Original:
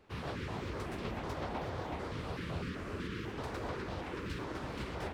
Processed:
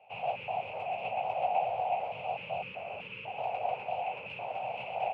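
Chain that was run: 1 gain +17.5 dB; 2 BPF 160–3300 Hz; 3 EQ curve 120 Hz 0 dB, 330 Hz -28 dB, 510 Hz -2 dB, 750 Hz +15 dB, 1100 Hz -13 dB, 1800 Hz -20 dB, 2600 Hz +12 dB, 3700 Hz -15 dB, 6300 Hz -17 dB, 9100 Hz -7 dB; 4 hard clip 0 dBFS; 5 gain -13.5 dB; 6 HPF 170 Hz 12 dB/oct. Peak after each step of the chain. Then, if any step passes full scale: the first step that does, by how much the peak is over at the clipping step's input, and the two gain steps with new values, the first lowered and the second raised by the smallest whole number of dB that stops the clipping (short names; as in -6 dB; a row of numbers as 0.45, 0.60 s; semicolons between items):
-8.0, -9.5, -4.5, -4.5, -18.0, -18.5 dBFS; no overload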